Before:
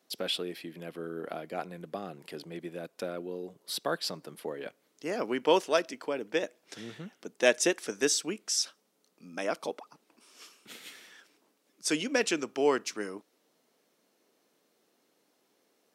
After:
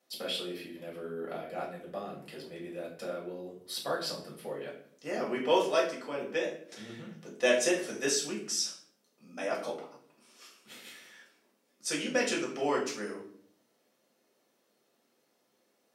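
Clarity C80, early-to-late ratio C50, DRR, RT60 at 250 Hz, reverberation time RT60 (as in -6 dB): 10.5 dB, 6.5 dB, -4.5 dB, 0.80 s, 0.60 s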